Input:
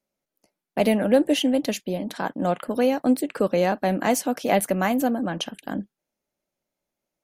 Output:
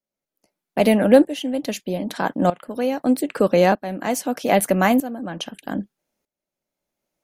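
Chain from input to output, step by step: tremolo saw up 0.8 Hz, depth 85%; gain +6.5 dB

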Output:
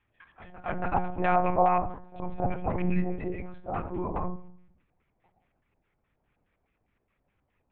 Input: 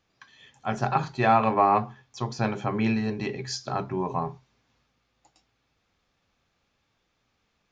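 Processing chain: low shelf 220 Hz +5 dB; LFO low-pass square 4.8 Hz 710–2200 Hz; pre-echo 0.28 s -17 dB; on a send at -7 dB: reverb RT60 0.60 s, pre-delay 3 ms; on the sum: monotone LPC vocoder at 8 kHz 180 Hz; gain -7.5 dB

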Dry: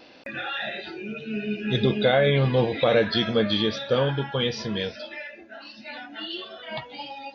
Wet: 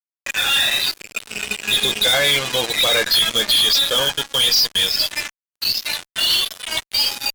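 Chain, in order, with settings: loudest bins only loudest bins 64; band-pass 5100 Hz, Q 5.6; fuzz box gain 55 dB, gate -57 dBFS

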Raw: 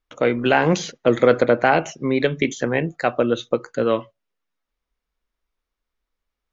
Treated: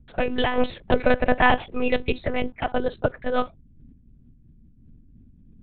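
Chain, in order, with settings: varispeed +16%; in parallel at -12 dB: requantised 6-bit, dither none; on the sum: hum 60 Hz, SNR 26 dB; monotone LPC vocoder at 8 kHz 250 Hz; noise-modulated level, depth 65%; gain -1 dB

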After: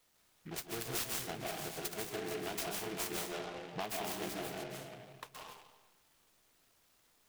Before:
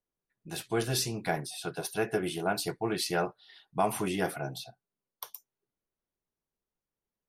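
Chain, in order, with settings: resonant high shelf 4400 Hz +11 dB, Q 1.5; low-pass opened by the level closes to 540 Hz, open at -25 dBFS; requantised 12-bit, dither triangular; harmonic-percussive split harmonic -5 dB; reverb RT60 1.1 s, pre-delay 0.11 s, DRR -1.5 dB; compressor 2.5:1, threshold -47 dBFS, peak gain reduction 20 dB; notch 570 Hz, Q 12; noise-modulated delay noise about 1800 Hz, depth 0.12 ms; gain +2.5 dB

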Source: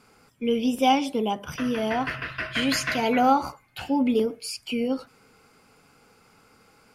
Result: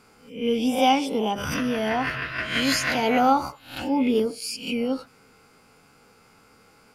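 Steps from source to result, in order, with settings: spectral swells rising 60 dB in 0.46 s; 1.24–2.24 backwards sustainer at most 29 dB/s

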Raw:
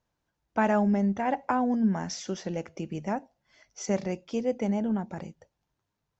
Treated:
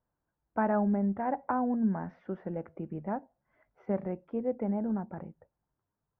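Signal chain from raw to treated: LPF 1600 Hz 24 dB/oct; gain -3.5 dB

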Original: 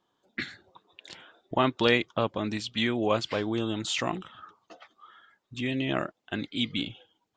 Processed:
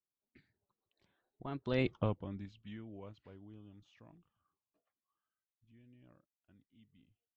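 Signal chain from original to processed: Doppler pass-by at 1.92, 26 m/s, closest 1.3 m; RIAA curve playback; gain -2.5 dB

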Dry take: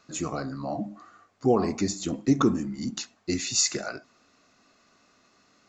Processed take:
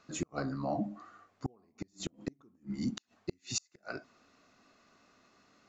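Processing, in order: high shelf 4900 Hz -7.5 dB; flipped gate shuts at -19 dBFS, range -39 dB; gain -2 dB

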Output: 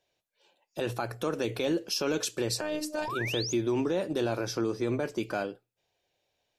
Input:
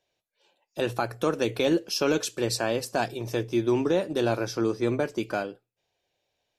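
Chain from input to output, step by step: limiter -20 dBFS, peak gain reduction 7 dB; 2.8–3.53 painted sound rise 270–7100 Hz -35 dBFS; 2.61–3.08 robotiser 305 Hz

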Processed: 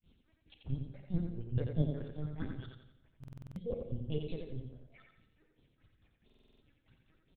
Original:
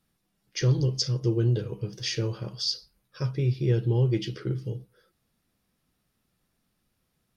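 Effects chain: trilling pitch shifter +5.5 st, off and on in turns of 0.316 s; thirty-one-band EQ 315 Hz -7 dB, 630 Hz -5 dB, 1000 Hz -11 dB; auto swell 0.58 s; reverse; compressor 12:1, threshold -38 dBFS, peak gain reduction 14.5 dB; reverse; grains 0.187 s, grains 4.7/s; phaser stages 6, 2.9 Hz, lowest notch 200–1900 Hz; LPC vocoder at 8 kHz pitch kept; on a send: feedback echo 87 ms, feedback 38%, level -5 dB; on the sum: two-slope reverb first 0.83 s, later 2.9 s, from -25 dB, DRR 10 dB; stuck buffer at 3.19/6.25, samples 2048, times 7; gain +12 dB

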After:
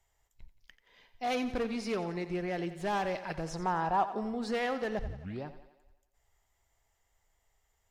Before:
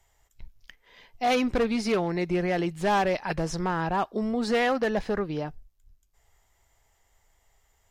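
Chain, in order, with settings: 3.5–4.24 bell 830 Hz +9 dB 0.94 oct; 4.99 tape start 0.46 s; thinning echo 88 ms, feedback 59%, high-pass 190 Hz, level -12.5 dB; gain -8.5 dB

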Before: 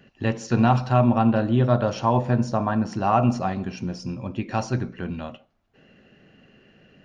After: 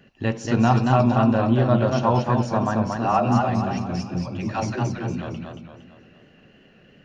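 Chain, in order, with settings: 2.96–5.22 dispersion lows, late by 0.101 s, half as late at 340 Hz; warbling echo 0.229 s, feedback 44%, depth 112 cents, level -4 dB

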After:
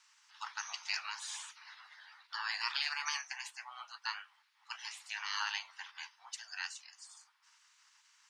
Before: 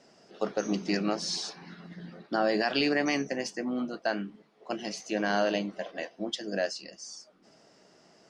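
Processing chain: spectral gate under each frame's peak -15 dB weak; Chebyshev high-pass 880 Hz, order 5; gain +1.5 dB

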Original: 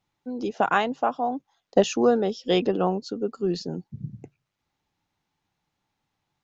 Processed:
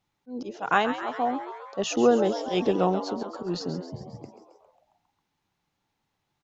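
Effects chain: auto swell 0.118 s; frequency-shifting echo 0.135 s, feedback 61%, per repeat +100 Hz, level -11 dB

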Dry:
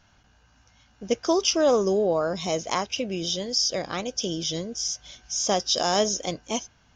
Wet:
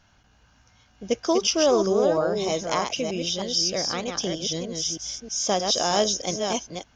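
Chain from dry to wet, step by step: reverse delay 0.311 s, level -5 dB

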